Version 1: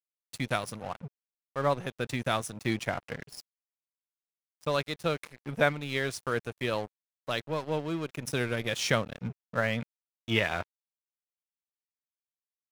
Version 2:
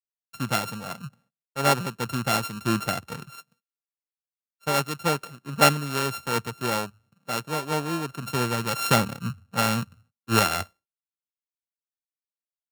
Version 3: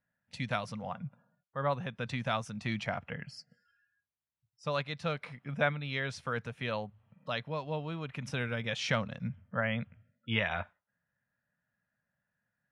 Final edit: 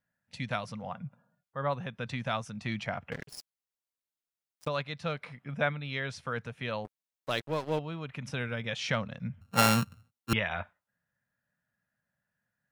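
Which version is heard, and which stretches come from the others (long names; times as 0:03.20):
3
0:03.12–0:04.68: punch in from 1
0:06.85–0:07.79: punch in from 1
0:09.41–0:10.33: punch in from 2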